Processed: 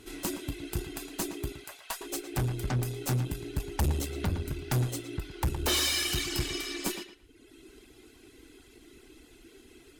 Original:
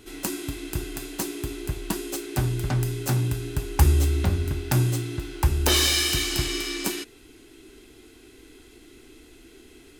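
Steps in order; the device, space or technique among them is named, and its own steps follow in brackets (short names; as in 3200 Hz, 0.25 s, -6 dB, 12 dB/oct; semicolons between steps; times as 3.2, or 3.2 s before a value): reverb removal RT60 0.99 s; 1.52–2.01 elliptic high-pass 540 Hz; rockabilly slapback (tube stage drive 23 dB, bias 0.5; tape echo 0.114 s, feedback 23%, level -8.5 dB, low-pass 3400 Hz)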